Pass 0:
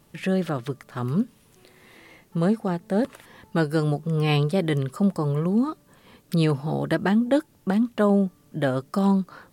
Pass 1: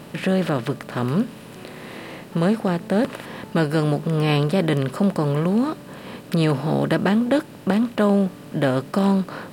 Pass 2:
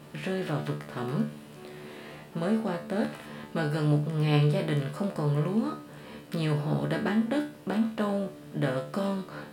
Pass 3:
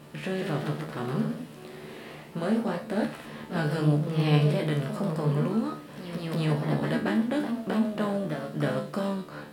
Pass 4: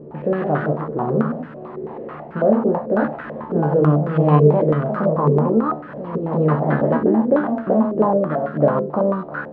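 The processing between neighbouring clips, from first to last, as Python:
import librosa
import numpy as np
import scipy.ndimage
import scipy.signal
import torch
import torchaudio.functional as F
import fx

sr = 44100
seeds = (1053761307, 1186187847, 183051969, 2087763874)

y1 = fx.bin_compress(x, sr, power=0.6)
y2 = fx.comb_fb(y1, sr, f0_hz=74.0, decay_s=0.38, harmonics='all', damping=0.0, mix_pct=90)
y3 = fx.echo_pitch(y2, sr, ms=167, semitones=1, count=2, db_per_echo=-6.0)
y4 = fx.filter_held_lowpass(y3, sr, hz=9.1, low_hz=430.0, high_hz=1500.0)
y4 = y4 * 10.0 ** (7.0 / 20.0)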